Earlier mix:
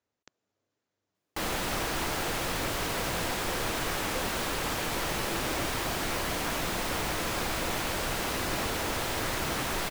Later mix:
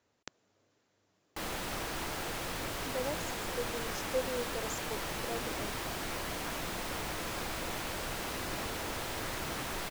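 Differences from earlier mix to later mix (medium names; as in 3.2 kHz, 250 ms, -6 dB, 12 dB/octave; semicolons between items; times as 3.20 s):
speech +10.5 dB; background -6.5 dB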